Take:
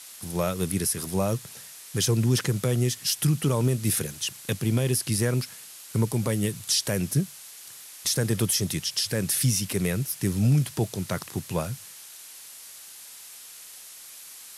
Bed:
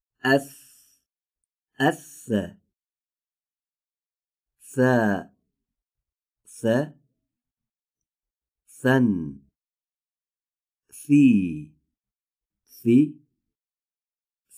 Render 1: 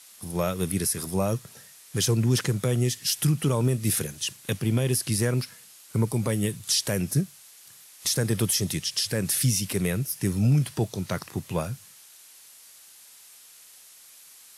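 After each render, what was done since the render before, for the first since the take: noise print and reduce 6 dB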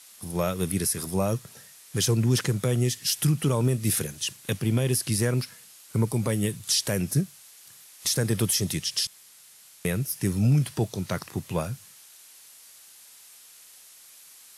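9.07–9.85 room tone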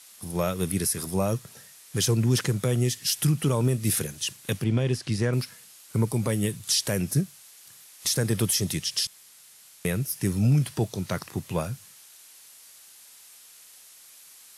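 4.64–5.33 air absorption 96 m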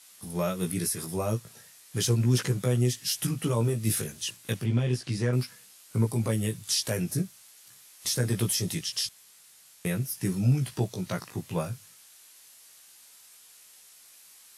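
chorus 0.38 Hz, delay 16 ms, depth 2 ms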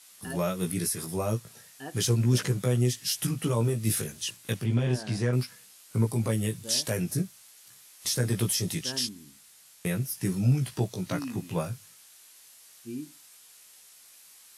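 add bed -20.5 dB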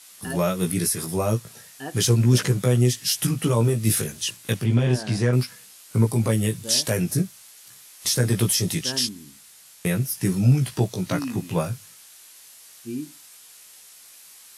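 gain +6 dB

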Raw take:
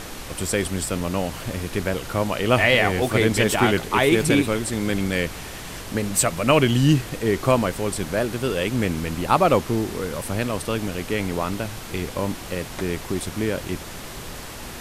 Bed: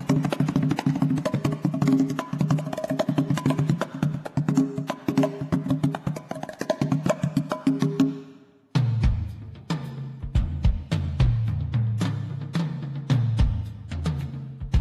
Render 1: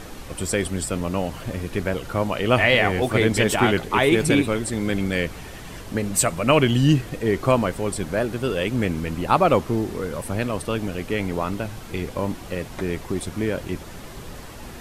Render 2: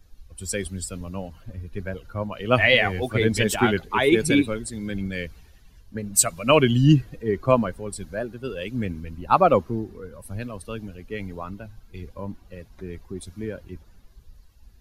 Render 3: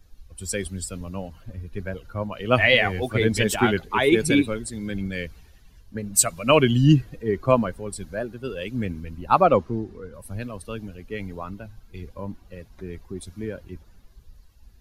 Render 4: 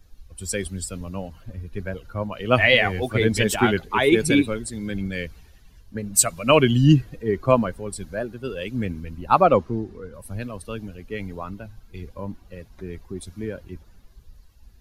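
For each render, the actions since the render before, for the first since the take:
denoiser 7 dB, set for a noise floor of -36 dBFS
per-bin expansion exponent 1.5; three-band expander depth 40%
9.45–10.14 Bessel low-pass 7600 Hz
gain +1 dB

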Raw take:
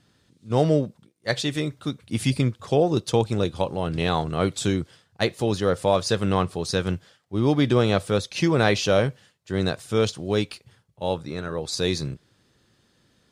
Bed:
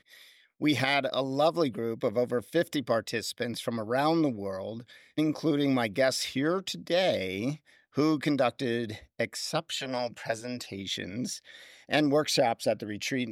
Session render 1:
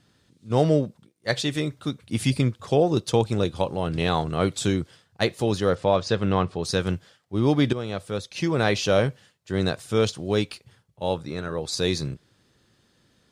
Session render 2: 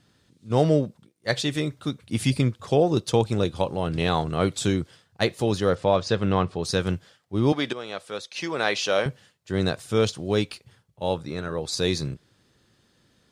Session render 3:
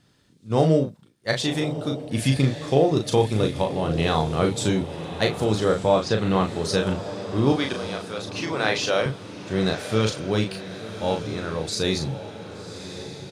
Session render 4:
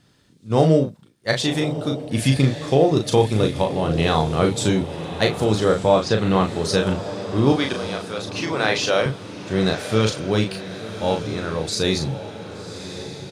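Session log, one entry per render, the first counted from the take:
5.75–6.63 air absorption 110 m; 7.73–9.04 fade in, from -13 dB
7.52–9.06 weighting filter A
doubler 37 ms -5 dB; diffused feedback echo 1.123 s, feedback 48%, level -11 dB
gain +3 dB; limiter -3 dBFS, peak gain reduction 2 dB

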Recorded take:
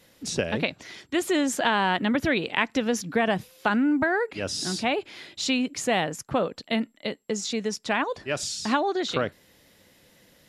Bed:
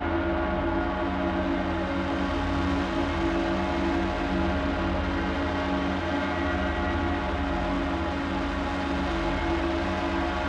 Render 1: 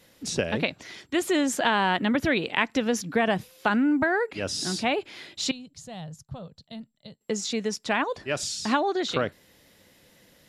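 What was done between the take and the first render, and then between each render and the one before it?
5.51–7.21 EQ curve 150 Hz 0 dB, 310 Hz -24 dB, 660 Hz -16 dB, 2300 Hz -25 dB, 3900 Hz -10 dB, 12000 Hz -16 dB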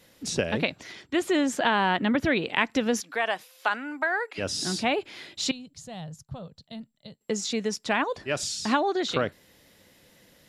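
0.92–2.49 high shelf 7400 Hz -9.5 dB; 3–4.38 HPF 680 Hz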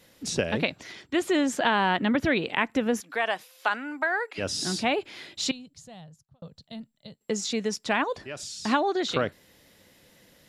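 2.55–3.1 bell 4800 Hz -9.5 dB 1.2 oct; 5.44–6.42 fade out linear; 8.18–8.65 compressor 2:1, threshold -40 dBFS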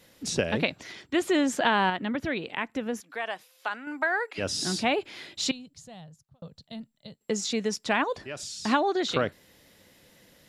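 1.9–3.87 gain -6 dB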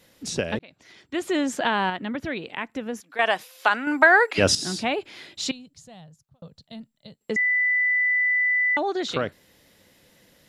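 0.59–1.36 fade in; 3.19–4.55 gain +11.5 dB; 7.36–8.77 bleep 1990 Hz -18.5 dBFS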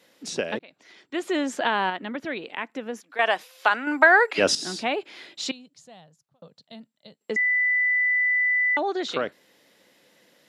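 HPF 260 Hz 12 dB/oct; high shelf 8200 Hz -8 dB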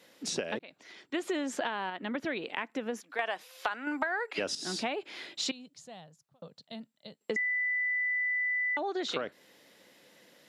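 compressor 12:1, threshold -29 dBFS, peak gain reduction 18.5 dB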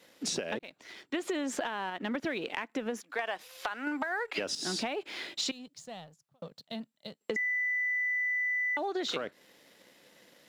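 compressor, threshold -33 dBFS, peak gain reduction 8 dB; sample leveller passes 1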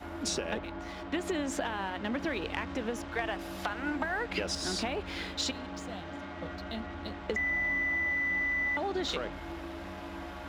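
add bed -14.5 dB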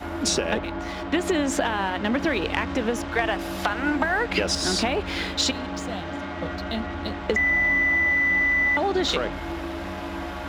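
gain +9.5 dB

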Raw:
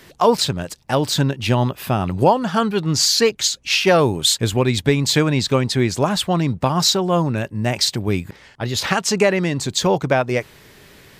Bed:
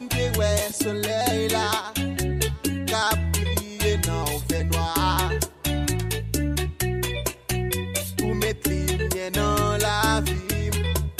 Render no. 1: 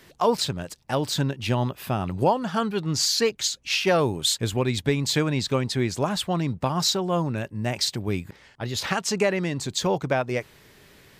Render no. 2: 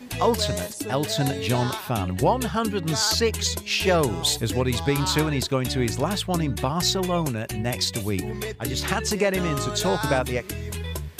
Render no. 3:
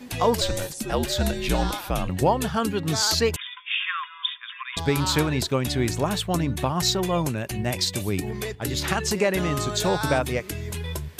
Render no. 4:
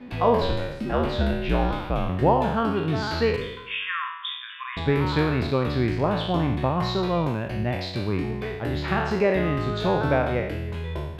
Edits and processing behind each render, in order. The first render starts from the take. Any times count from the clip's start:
gain -6.5 dB
add bed -7 dB
0.41–2.09 frequency shift -67 Hz; 3.36–4.77 brick-wall FIR band-pass 980–3700 Hz; 5.93–6.87 notch 4900 Hz, Q 13
spectral trails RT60 0.88 s; air absorption 400 m

